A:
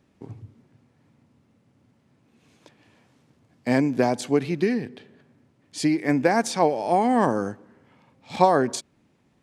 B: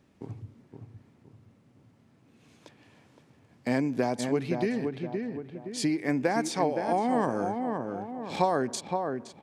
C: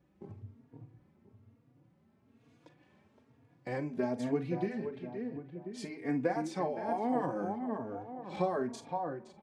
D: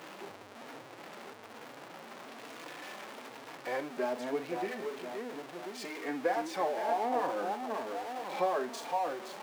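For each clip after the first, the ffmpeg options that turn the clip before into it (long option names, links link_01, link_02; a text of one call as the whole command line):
ffmpeg -i in.wav -filter_complex "[0:a]asplit=2[link_01][link_02];[link_02]adelay=518,lowpass=frequency=1600:poles=1,volume=-6.5dB,asplit=2[link_03][link_04];[link_04]adelay=518,lowpass=frequency=1600:poles=1,volume=0.35,asplit=2[link_05][link_06];[link_06]adelay=518,lowpass=frequency=1600:poles=1,volume=0.35,asplit=2[link_07][link_08];[link_08]adelay=518,lowpass=frequency=1600:poles=1,volume=0.35[link_09];[link_03][link_05][link_07][link_09]amix=inputs=4:normalize=0[link_10];[link_01][link_10]amix=inputs=2:normalize=0,acompressor=threshold=-34dB:ratio=1.5" out.wav
ffmpeg -i in.wav -filter_complex "[0:a]highshelf=frequency=3000:gain=-11.5,asplit=2[link_01][link_02];[link_02]aecho=0:1:40|52:0.224|0.133[link_03];[link_01][link_03]amix=inputs=2:normalize=0,asplit=2[link_04][link_05];[link_05]adelay=3.6,afreqshift=1.1[link_06];[link_04][link_06]amix=inputs=2:normalize=1,volume=-3dB" out.wav
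ffmpeg -i in.wav -af "aeval=exprs='val(0)+0.5*0.0119*sgn(val(0))':channel_layout=same,highpass=500,highshelf=frequency=5100:gain=-8,volume=3dB" out.wav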